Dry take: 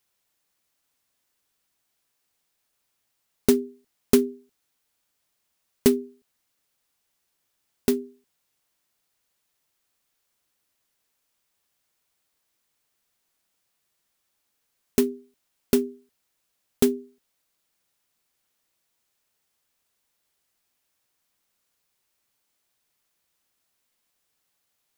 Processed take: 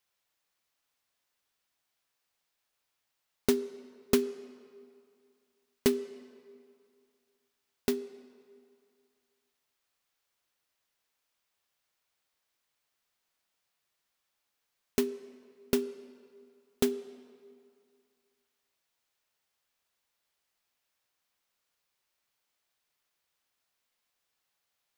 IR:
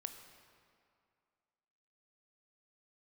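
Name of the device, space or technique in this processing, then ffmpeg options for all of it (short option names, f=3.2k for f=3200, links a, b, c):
filtered reverb send: -filter_complex "[0:a]asplit=2[a][b];[b]highpass=410,lowpass=6.6k[c];[1:a]atrim=start_sample=2205[d];[c][d]afir=irnorm=-1:irlink=0,volume=0.5dB[e];[a][e]amix=inputs=2:normalize=0,volume=-7.5dB"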